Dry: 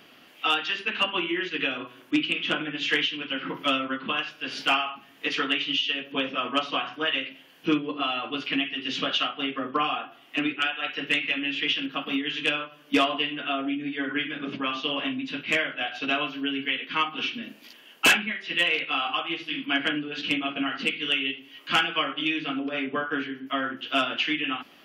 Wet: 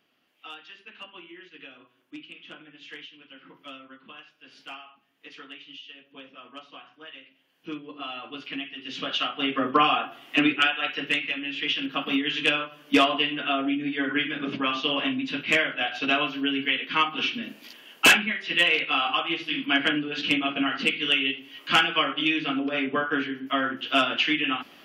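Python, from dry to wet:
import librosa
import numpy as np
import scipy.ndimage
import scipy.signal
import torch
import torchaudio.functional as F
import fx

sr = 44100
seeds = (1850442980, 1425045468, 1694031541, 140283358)

y = fx.gain(x, sr, db=fx.line((7.25, -18.0), (8.12, -7.5), (8.83, -7.5), (9.62, 5.5), (10.54, 5.5), (11.45, -4.0), (12.01, 2.5)))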